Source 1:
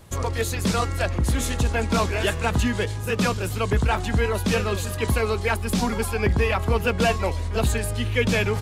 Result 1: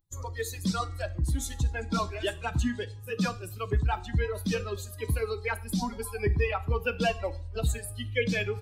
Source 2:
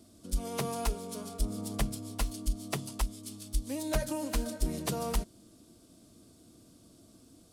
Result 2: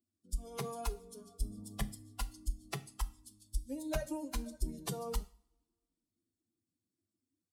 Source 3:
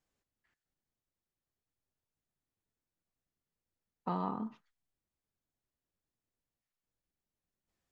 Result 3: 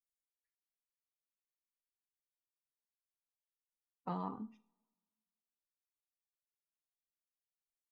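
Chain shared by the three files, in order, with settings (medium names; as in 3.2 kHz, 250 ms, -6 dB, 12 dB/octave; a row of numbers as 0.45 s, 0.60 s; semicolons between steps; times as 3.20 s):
expander on every frequency bin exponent 2; two-slope reverb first 0.4 s, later 1.6 s, from -27 dB, DRR 11.5 dB; trim -2.5 dB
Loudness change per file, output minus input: -7.5 LU, -6.5 LU, -5.0 LU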